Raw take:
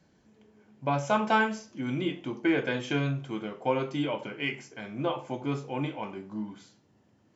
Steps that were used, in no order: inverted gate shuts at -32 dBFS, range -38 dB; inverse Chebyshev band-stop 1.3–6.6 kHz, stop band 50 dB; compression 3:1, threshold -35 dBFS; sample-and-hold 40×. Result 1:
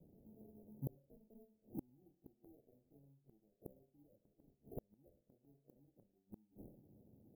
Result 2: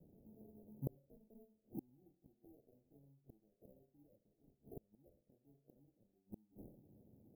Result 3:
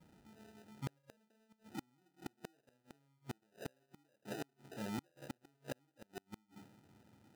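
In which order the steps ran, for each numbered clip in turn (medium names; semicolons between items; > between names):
sample-and-hold > inverse Chebyshev band-stop > inverted gate > compression; inverted gate > sample-and-hold > inverse Chebyshev band-stop > compression; inverse Chebyshev band-stop > sample-and-hold > compression > inverted gate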